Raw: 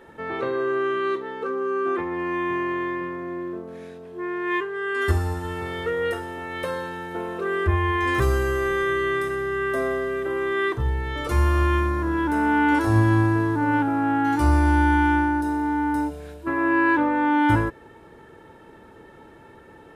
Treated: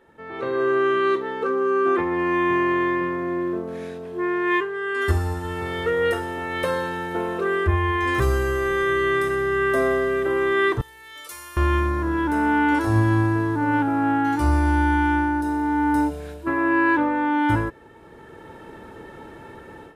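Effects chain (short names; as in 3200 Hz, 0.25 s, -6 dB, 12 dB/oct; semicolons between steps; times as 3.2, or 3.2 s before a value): 10.81–11.57 differentiator; AGC gain up to 15 dB; gain -8.5 dB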